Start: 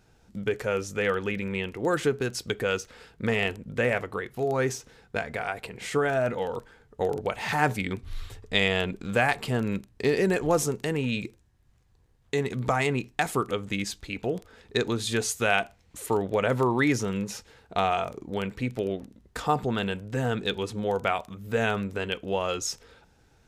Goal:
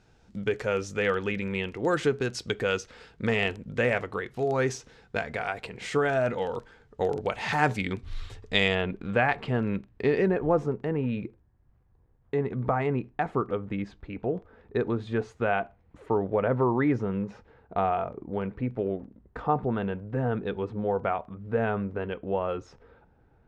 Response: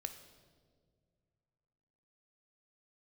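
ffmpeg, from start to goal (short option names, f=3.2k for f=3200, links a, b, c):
-af "asetnsamples=n=441:p=0,asendcmd='8.75 lowpass f 2400;10.28 lowpass f 1300',lowpass=6.5k"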